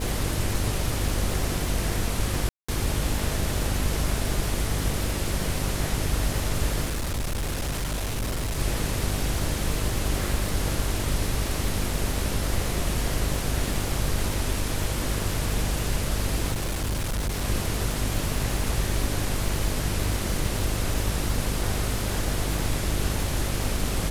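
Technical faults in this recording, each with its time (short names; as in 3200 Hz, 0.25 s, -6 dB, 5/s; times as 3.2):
buzz 50 Hz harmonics 13 -30 dBFS
crackle 370/s -31 dBFS
2.49–2.69 gap 0.195 s
6.85–8.59 clipped -24.5 dBFS
16.52–17.45 clipped -23.5 dBFS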